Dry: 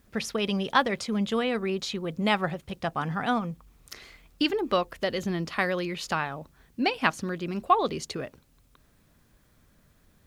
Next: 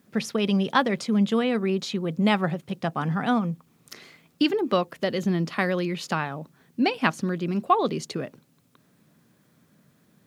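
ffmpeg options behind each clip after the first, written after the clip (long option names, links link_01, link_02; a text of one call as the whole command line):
ffmpeg -i in.wav -af "highpass=frequency=150:width=0.5412,highpass=frequency=150:width=1.3066,lowshelf=frequency=250:gain=11" out.wav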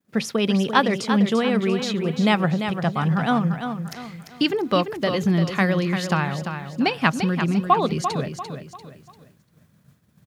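ffmpeg -i in.wav -af "asubboost=boost=6:cutoff=110,aecho=1:1:344|688|1032|1376:0.398|0.147|0.0545|0.0202,agate=range=-33dB:threshold=-51dB:ratio=3:detection=peak,volume=3.5dB" out.wav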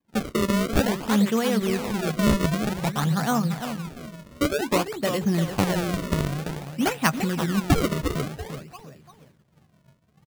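ffmpeg -i in.wav -filter_complex "[0:a]acrusher=samples=31:mix=1:aa=0.000001:lfo=1:lforange=49.6:lforate=0.53,asplit=2[link_01][link_02];[link_02]adelay=14,volume=-13.5dB[link_03];[link_01][link_03]amix=inputs=2:normalize=0,volume=-2.5dB" out.wav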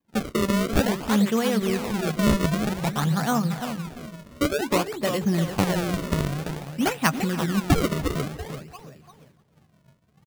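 ffmpeg -i in.wav -filter_complex "[0:a]asplit=2[link_01][link_02];[link_02]adelay=291.5,volume=-19dB,highshelf=frequency=4000:gain=-6.56[link_03];[link_01][link_03]amix=inputs=2:normalize=0" out.wav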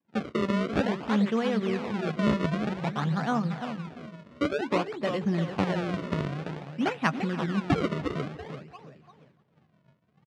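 ffmpeg -i in.wav -af "highpass=120,lowpass=3300,volume=-3.5dB" out.wav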